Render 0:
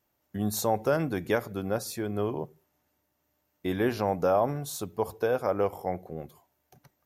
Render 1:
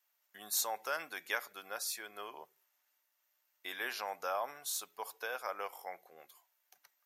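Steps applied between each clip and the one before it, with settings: high-pass 1.4 kHz 12 dB/octave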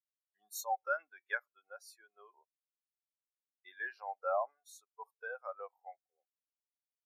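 spectral contrast expander 2.5:1; trim -1.5 dB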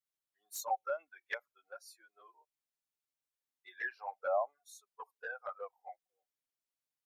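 touch-sensitive flanger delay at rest 7.6 ms, full sweep at -33.5 dBFS; trim +3.5 dB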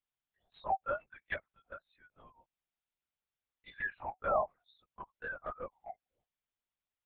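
LPC vocoder at 8 kHz whisper; trim +1.5 dB

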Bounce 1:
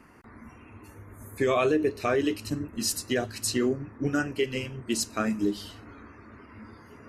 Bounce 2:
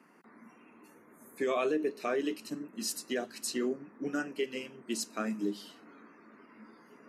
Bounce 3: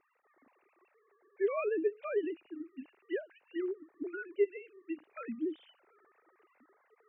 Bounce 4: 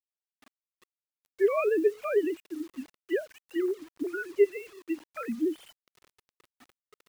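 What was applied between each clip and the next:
Chebyshev high-pass 180 Hz, order 4; trim -6 dB
formants replaced by sine waves; trim -2 dB
bit crusher 10-bit; trim +7 dB

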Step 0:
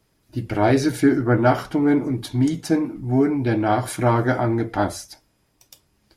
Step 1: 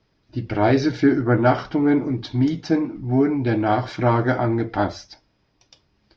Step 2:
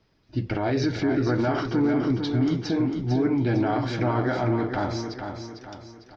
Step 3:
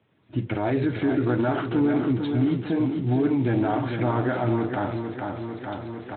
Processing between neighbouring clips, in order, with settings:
steep low-pass 5.6 kHz 48 dB/octave
peak limiter -16.5 dBFS, peak gain reduction 11 dB; feedback delay 451 ms, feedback 43%, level -7 dB
recorder AGC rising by 15 dB/s; Speex 15 kbps 8 kHz

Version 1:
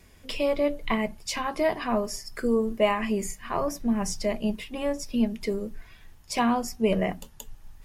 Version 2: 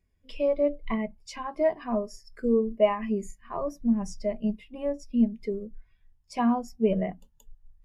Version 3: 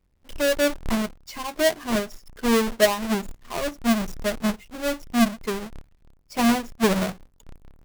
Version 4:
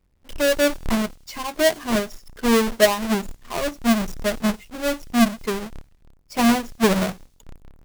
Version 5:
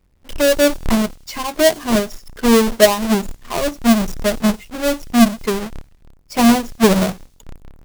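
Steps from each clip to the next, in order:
spectral contrast expander 1.5:1
square wave that keeps the level
feedback echo behind a high-pass 94 ms, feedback 43%, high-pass 4.6 kHz, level -21.5 dB; trim +2.5 dB
dynamic bell 1.8 kHz, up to -4 dB, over -31 dBFS, Q 0.79; trim +6 dB

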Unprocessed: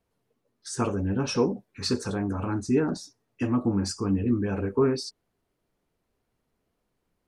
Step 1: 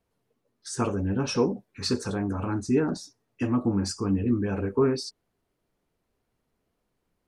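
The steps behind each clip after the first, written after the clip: no audible change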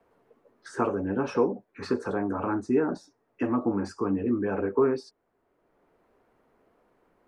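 three-band isolator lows -14 dB, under 270 Hz, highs -18 dB, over 2 kHz; three bands compressed up and down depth 40%; trim +3.5 dB

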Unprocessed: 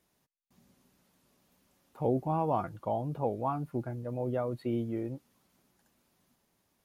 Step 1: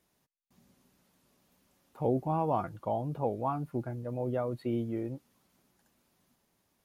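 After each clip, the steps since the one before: no audible change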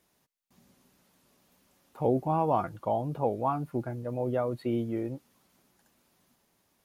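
bass shelf 250 Hz -3.5 dB; trim +4 dB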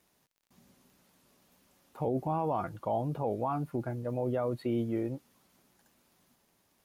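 peak limiter -22 dBFS, peak gain reduction 7.5 dB; crackle 21 per s -56 dBFS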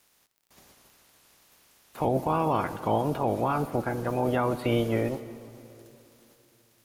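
spectral peaks clipped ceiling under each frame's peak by 17 dB; on a send at -13 dB: reverberation RT60 2.9 s, pre-delay 34 ms; on the sum: trim +6 dB

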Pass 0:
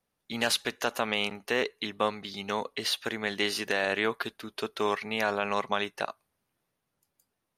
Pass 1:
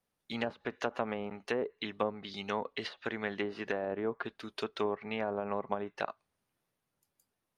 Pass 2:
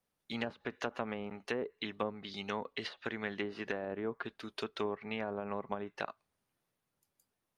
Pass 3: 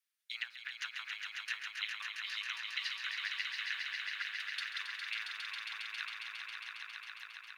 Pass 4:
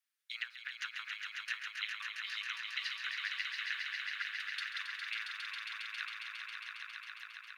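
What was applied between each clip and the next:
low-pass that closes with the level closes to 690 Hz, closed at -24 dBFS; trim -3 dB
dynamic bell 670 Hz, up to -4 dB, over -41 dBFS, Q 0.79; trim -1 dB
inverse Chebyshev high-pass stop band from 630 Hz, stop band 50 dB; in parallel at -10.5 dB: small samples zeroed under -56 dBFS; on the sum: echo with a slow build-up 136 ms, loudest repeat 5, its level -6 dB
ladder high-pass 960 Hz, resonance 30%; trim +5 dB

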